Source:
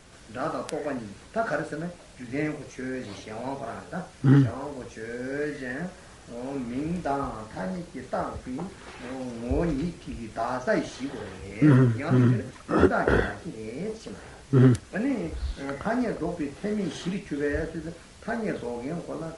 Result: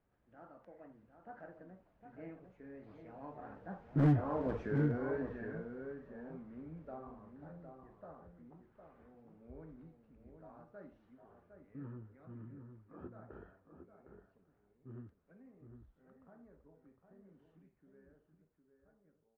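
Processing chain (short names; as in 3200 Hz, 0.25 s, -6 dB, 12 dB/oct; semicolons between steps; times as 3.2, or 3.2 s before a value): ending faded out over 2.45 s; Doppler pass-by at 4.53, 23 m/s, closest 3.9 m; LPF 1400 Hz 12 dB/oct; outdoor echo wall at 130 m, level -7 dB; one-sided clip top -28.5 dBFS, bottom -23 dBFS; gain +2.5 dB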